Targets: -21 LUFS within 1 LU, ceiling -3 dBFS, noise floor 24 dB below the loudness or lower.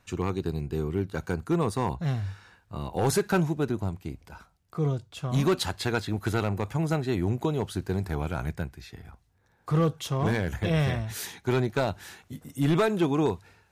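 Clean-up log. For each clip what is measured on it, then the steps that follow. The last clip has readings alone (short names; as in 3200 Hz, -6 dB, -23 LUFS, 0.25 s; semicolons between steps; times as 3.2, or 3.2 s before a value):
clipped 0.8%; flat tops at -17.5 dBFS; loudness -28.5 LUFS; peak -17.5 dBFS; loudness target -21.0 LUFS
-> clip repair -17.5 dBFS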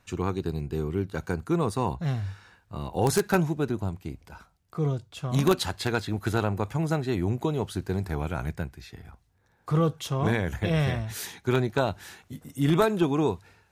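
clipped 0.0%; loudness -28.0 LUFS; peak -8.5 dBFS; loudness target -21.0 LUFS
-> gain +7 dB; limiter -3 dBFS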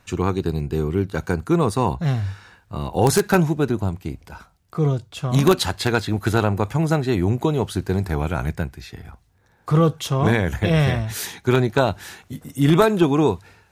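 loudness -21.0 LUFS; peak -3.0 dBFS; noise floor -59 dBFS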